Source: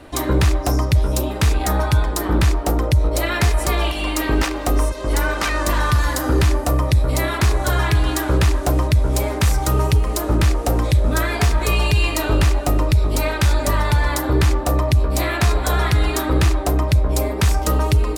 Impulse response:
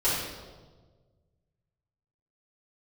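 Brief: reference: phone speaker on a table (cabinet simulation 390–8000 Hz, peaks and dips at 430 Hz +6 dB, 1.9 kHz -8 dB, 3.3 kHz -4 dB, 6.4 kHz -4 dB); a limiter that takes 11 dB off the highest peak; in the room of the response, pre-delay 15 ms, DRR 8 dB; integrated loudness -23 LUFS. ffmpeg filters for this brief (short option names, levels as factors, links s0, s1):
-filter_complex "[0:a]alimiter=limit=0.119:level=0:latency=1,asplit=2[s0][s1];[1:a]atrim=start_sample=2205,adelay=15[s2];[s1][s2]afir=irnorm=-1:irlink=0,volume=0.0944[s3];[s0][s3]amix=inputs=2:normalize=0,highpass=f=390:w=0.5412,highpass=f=390:w=1.3066,equalizer=f=430:t=q:w=4:g=6,equalizer=f=1900:t=q:w=4:g=-8,equalizer=f=3300:t=q:w=4:g=-4,equalizer=f=6400:t=q:w=4:g=-4,lowpass=f=8000:w=0.5412,lowpass=f=8000:w=1.3066,volume=2.51"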